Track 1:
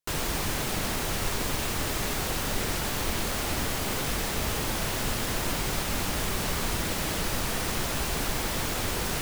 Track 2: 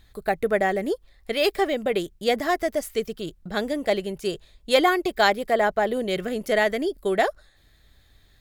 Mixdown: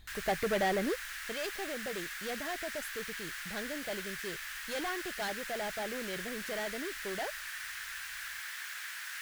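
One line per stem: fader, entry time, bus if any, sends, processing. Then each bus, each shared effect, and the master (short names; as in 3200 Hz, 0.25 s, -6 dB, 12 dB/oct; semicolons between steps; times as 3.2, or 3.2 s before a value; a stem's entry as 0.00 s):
-2.0 dB, 0.00 s, no send, ladder high-pass 1500 Hz, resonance 65%
0.85 s -1.5 dB -> 1.41 s -10 dB, 0.00 s, no send, soft clip -22.5 dBFS, distortion -8 dB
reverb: off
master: bell 380 Hz -3 dB 1.3 oct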